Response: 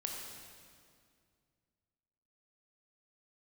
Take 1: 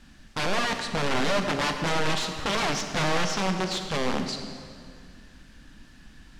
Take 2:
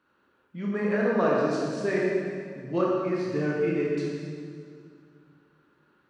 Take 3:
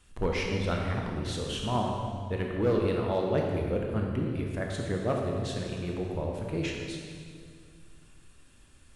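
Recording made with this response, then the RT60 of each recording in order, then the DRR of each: 3; 2.2, 2.2, 2.2 seconds; 5.5, −4.5, 0.0 decibels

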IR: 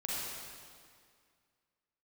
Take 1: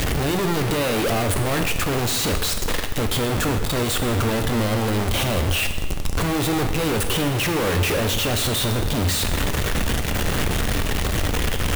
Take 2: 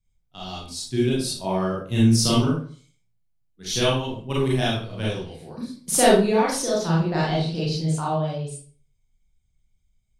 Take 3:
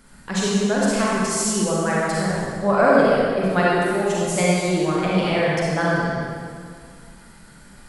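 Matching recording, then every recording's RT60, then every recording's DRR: 3; 1.4, 0.45, 2.1 seconds; 5.5, −6.5, −6.5 decibels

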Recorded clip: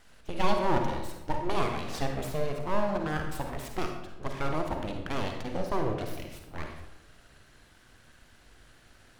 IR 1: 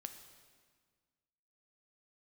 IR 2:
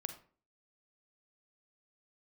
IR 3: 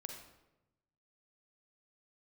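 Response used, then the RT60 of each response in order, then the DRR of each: 3; 1.7, 0.45, 0.95 seconds; 7.0, 8.0, 3.0 decibels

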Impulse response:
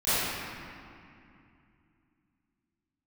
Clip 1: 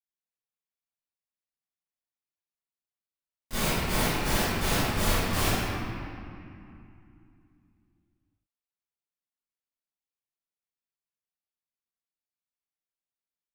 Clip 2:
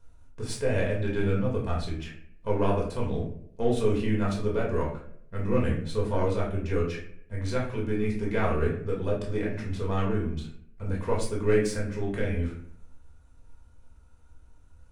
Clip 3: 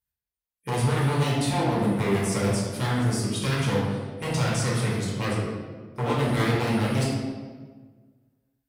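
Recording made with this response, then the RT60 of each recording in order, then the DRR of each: 1; 2.5, 0.65, 1.5 seconds; −20.5, −4.0, −6.5 decibels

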